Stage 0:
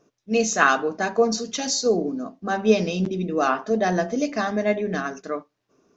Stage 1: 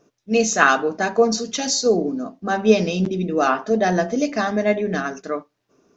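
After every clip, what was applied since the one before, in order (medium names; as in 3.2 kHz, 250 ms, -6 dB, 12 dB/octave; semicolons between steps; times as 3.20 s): band-stop 1.1 kHz, Q 24; trim +3 dB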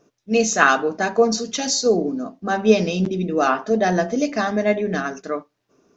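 no audible change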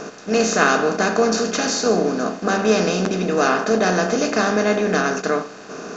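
spectral levelling over time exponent 0.4; trim -5 dB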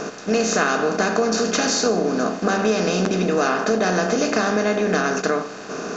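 compression 4:1, threshold -20 dBFS, peak gain reduction 8.5 dB; trim +3.5 dB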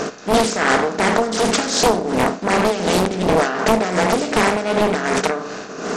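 tremolo 2.7 Hz, depth 65%; loudspeaker Doppler distortion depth 0.96 ms; trim +6 dB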